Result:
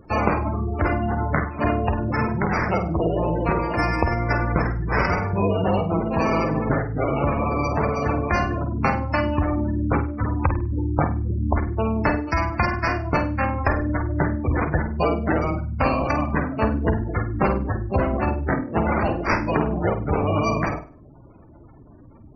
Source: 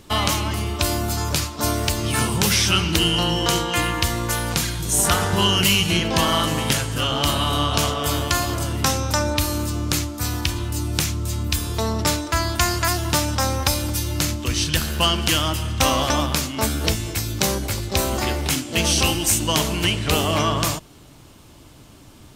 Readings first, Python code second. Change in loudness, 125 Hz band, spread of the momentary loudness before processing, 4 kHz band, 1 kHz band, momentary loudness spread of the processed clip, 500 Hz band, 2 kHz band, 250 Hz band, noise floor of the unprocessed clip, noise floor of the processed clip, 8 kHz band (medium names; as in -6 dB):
-2.5 dB, 0.0 dB, 6 LU, -23.0 dB, +1.0 dB, 3 LU, +2.5 dB, -1.5 dB, +1.5 dB, -46 dBFS, -46 dBFS, under -25 dB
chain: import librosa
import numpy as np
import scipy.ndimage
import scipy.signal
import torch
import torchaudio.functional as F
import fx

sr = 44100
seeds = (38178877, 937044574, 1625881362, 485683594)

p1 = fx.sample_hold(x, sr, seeds[0], rate_hz=3500.0, jitter_pct=0)
p2 = fx.rider(p1, sr, range_db=10, speed_s=0.5)
p3 = fx.cheby_harmonics(p2, sr, harmonics=(4,), levels_db=(-25,), full_scale_db=0.5)
p4 = fx.spec_gate(p3, sr, threshold_db=-15, keep='strong')
y = p4 + fx.room_flutter(p4, sr, wall_m=8.6, rt60_s=0.34, dry=0)